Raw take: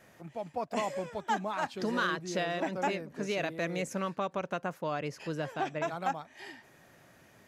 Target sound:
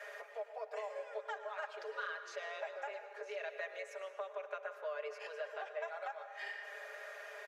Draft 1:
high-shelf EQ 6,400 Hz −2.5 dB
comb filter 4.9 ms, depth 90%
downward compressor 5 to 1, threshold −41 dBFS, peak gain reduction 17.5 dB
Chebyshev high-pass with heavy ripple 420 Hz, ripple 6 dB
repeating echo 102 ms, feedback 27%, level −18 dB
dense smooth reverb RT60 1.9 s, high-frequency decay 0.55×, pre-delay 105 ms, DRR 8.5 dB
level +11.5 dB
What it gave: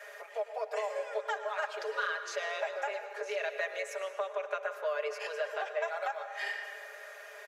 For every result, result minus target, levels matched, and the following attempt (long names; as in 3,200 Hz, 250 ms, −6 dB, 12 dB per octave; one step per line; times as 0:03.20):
downward compressor: peak gain reduction −8 dB; 8,000 Hz band +3.5 dB
high-shelf EQ 6,400 Hz −2.5 dB
comb filter 4.9 ms, depth 90%
downward compressor 5 to 1, threshold −51 dBFS, peak gain reduction 25.5 dB
Chebyshev high-pass with heavy ripple 420 Hz, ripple 6 dB
repeating echo 102 ms, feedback 27%, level −18 dB
dense smooth reverb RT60 1.9 s, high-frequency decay 0.55×, pre-delay 105 ms, DRR 8.5 dB
level +11.5 dB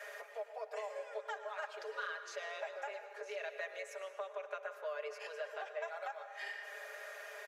8,000 Hz band +4.5 dB
high-shelf EQ 6,400 Hz −11.5 dB
comb filter 4.9 ms, depth 90%
downward compressor 5 to 1, threshold −51 dBFS, peak gain reduction 25.5 dB
Chebyshev high-pass with heavy ripple 420 Hz, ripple 6 dB
repeating echo 102 ms, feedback 27%, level −18 dB
dense smooth reverb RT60 1.9 s, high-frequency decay 0.55×, pre-delay 105 ms, DRR 8.5 dB
level +11.5 dB